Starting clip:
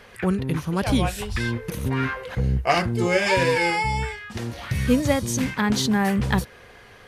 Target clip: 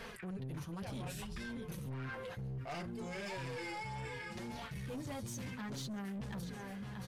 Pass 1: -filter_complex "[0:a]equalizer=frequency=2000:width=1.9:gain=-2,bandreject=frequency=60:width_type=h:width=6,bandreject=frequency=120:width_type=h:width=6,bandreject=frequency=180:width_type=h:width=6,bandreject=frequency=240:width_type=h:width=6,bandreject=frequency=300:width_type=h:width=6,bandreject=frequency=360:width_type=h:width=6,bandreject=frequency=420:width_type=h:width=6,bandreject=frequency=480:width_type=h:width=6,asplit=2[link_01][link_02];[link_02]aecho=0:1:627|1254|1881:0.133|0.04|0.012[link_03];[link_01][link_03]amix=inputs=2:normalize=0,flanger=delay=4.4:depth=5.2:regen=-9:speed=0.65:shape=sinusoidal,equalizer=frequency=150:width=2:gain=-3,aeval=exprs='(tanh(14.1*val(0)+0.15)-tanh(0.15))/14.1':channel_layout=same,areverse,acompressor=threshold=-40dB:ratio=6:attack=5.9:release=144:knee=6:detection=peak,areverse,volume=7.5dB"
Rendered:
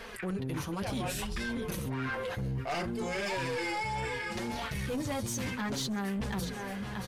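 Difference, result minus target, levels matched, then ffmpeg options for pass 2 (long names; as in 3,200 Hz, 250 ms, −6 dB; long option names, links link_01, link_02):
downward compressor: peak gain reduction −9.5 dB; 125 Hz band −3.0 dB
-filter_complex "[0:a]equalizer=frequency=2000:width=1.9:gain=-2,bandreject=frequency=60:width_type=h:width=6,bandreject=frequency=120:width_type=h:width=6,bandreject=frequency=180:width_type=h:width=6,bandreject=frequency=240:width_type=h:width=6,bandreject=frequency=300:width_type=h:width=6,bandreject=frequency=360:width_type=h:width=6,bandreject=frequency=420:width_type=h:width=6,bandreject=frequency=480:width_type=h:width=6,asplit=2[link_01][link_02];[link_02]aecho=0:1:627|1254|1881:0.133|0.04|0.012[link_03];[link_01][link_03]amix=inputs=2:normalize=0,flanger=delay=4.4:depth=5.2:regen=-9:speed=0.65:shape=sinusoidal,equalizer=frequency=150:width=2:gain=6,aeval=exprs='(tanh(14.1*val(0)+0.15)-tanh(0.15))/14.1':channel_layout=same,areverse,acompressor=threshold=-51dB:ratio=6:attack=5.9:release=144:knee=6:detection=peak,areverse,volume=7.5dB"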